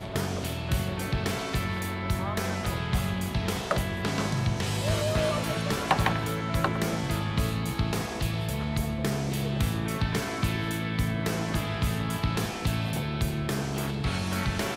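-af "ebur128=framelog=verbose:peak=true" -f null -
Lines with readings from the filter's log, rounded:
Integrated loudness:
  I:         -29.0 LUFS
  Threshold: -39.0 LUFS
Loudness range:
  LRA:         2.0 LU
  Threshold: -48.8 LUFS
  LRA low:   -29.6 LUFS
  LRA high:  -27.6 LUFS
True peak:
  Peak:      -11.1 dBFS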